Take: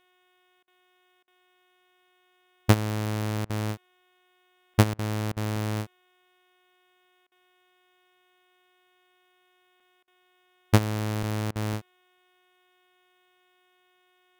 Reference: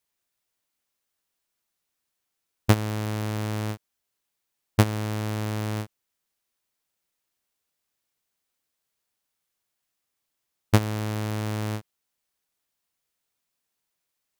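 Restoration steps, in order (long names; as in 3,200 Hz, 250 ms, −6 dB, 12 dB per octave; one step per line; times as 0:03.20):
hum removal 364.5 Hz, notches 10
repair the gap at 0:04.74/0:05.56/0:09.80/0:11.23/0:11.73, 3.7 ms
repair the gap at 0:00.63/0:01.23/0:03.45/0:04.94/0:05.32/0:07.27/0:10.03/0:11.51, 46 ms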